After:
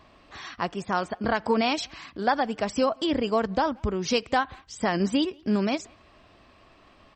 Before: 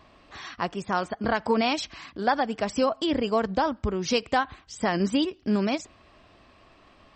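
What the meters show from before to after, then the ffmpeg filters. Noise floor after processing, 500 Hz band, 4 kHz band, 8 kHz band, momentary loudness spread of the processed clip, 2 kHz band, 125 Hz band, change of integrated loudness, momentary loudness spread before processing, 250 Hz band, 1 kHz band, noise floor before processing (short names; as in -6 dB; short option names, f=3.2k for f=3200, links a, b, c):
-57 dBFS, 0.0 dB, 0.0 dB, 0.0 dB, 8 LU, 0.0 dB, 0.0 dB, 0.0 dB, 8 LU, 0.0 dB, 0.0 dB, -57 dBFS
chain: -filter_complex "[0:a]asplit=2[a][b];[b]adelay=180,highpass=300,lowpass=3.4k,asoftclip=type=hard:threshold=-19.5dB,volume=-27dB[c];[a][c]amix=inputs=2:normalize=0"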